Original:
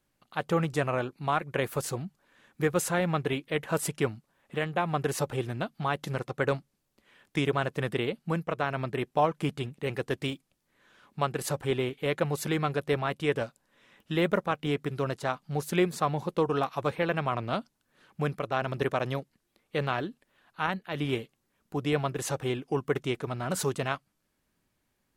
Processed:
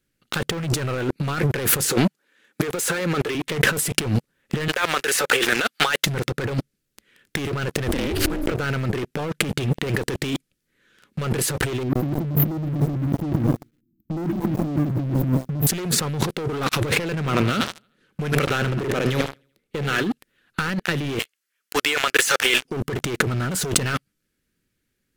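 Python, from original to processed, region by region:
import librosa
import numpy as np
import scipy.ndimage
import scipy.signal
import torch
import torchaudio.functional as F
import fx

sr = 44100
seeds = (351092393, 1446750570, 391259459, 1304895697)

y = fx.chain(x, sr, fx.highpass(hz=310.0, slope=12),
    fx.peak_eq(hz=850.0, db=4.0, octaves=0.33),
    fx.quant_float(bits=8), at=(1.9, 3.35))
y = fx.chain(y, sr, fx.highpass(hz=820.0, slope=12),
    fx.band_squash(depth_pct=70), at=(4.68, 6.06))
y = fx.chain(y, sr, fx.highpass(hz=63.0, slope=12),
    fx.ring_mod(carrier_hz=140.0),
    fx.sustainer(db_per_s=27.0), at=(7.88, 8.52))
y = fx.chain(y, sr, fx.brickwall_bandstop(low_hz=370.0, high_hz=13000.0),
    fx.echo_crushed(ms=122, feedback_pct=35, bits=10, wet_db=-14.0), at=(11.83, 15.67))
y = fx.chain(y, sr, fx.harmonic_tremolo(hz=1.2, depth_pct=50, crossover_hz=1000.0),
    fx.hum_notches(base_hz=60, count=2),
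    fx.echo_feedback(ms=76, feedback_pct=55, wet_db=-16.0), at=(17.15, 20.04))
y = fx.chain(y, sr, fx.highpass(hz=1100.0, slope=12),
    fx.notch(hz=3800.0, q=16.0), at=(21.19, 22.65))
y = fx.band_shelf(y, sr, hz=830.0, db=-12.5, octaves=1.1)
y = fx.leveller(y, sr, passes=5)
y = fx.over_compress(y, sr, threshold_db=-27.0, ratio=-1.0)
y = y * librosa.db_to_amplitude(4.0)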